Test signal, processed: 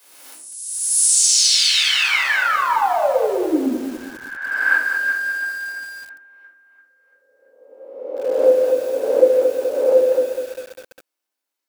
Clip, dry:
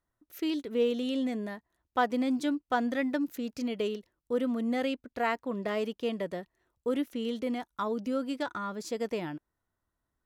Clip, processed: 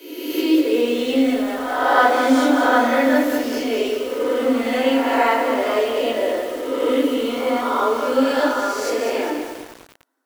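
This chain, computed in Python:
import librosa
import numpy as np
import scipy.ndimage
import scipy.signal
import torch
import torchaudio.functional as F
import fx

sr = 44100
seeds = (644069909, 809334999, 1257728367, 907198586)

y = fx.spec_swells(x, sr, rise_s=1.42)
y = scipy.signal.sosfilt(scipy.signal.butter(16, 250.0, 'highpass', fs=sr, output='sos'), y)
y = fx.room_shoebox(y, sr, seeds[0], volume_m3=430.0, walls='furnished', distance_m=5.2)
y = fx.echo_crushed(y, sr, ms=200, feedback_pct=55, bits=6, wet_db=-6.5)
y = y * librosa.db_to_amplitude(1.5)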